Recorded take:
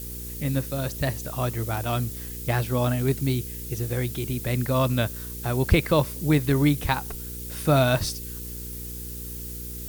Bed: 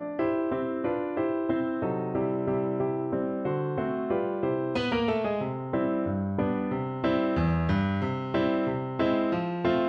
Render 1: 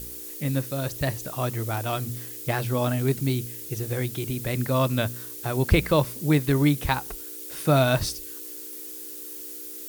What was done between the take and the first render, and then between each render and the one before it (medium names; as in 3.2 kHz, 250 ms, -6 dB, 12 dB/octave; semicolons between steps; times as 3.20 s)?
de-hum 60 Hz, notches 4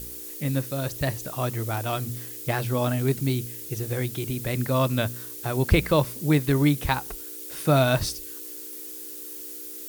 no audible change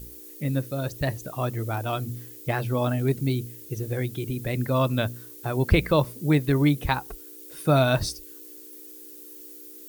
noise reduction 9 dB, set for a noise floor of -38 dBFS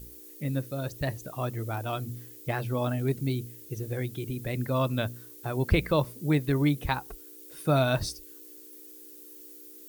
trim -4 dB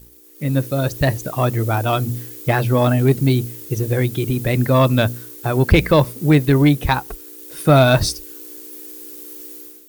level rider gain up to 10 dB; waveshaping leveller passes 1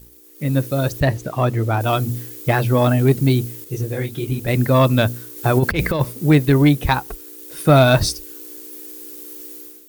1.00–1.81 s: low-pass 3.8 kHz 6 dB/octave; 3.64–4.48 s: detune thickener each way 42 cents; 5.36–6.01 s: compressor with a negative ratio -15 dBFS, ratio -0.5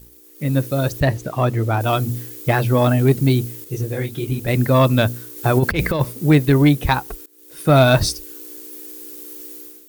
7.26–7.81 s: fade in, from -22.5 dB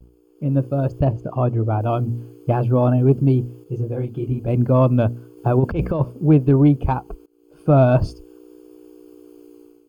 boxcar filter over 23 samples; vibrato 0.38 Hz 26 cents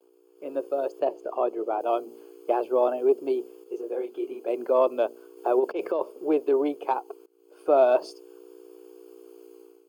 elliptic high-pass 370 Hz, stop band 80 dB; dynamic bell 1.6 kHz, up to -6 dB, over -39 dBFS, Q 0.98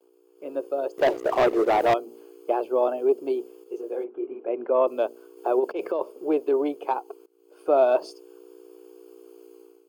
0.98–1.94 s: waveshaping leveller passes 3; 4.03–4.86 s: low-pass 1.7 kHz -> 3.1 kHz 24 dB/octave